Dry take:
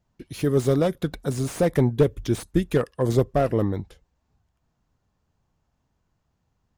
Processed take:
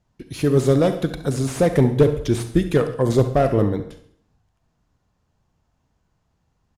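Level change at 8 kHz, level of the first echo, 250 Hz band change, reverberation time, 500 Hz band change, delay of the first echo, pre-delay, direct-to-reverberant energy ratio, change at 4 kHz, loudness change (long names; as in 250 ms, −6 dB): +3.5 dB, −14.0 dB, +4.0 dB, 0.60 s, +4.0 dB, 68 ms, 31 ms, 8.5 dB, +4.0 dB, +4.0 dB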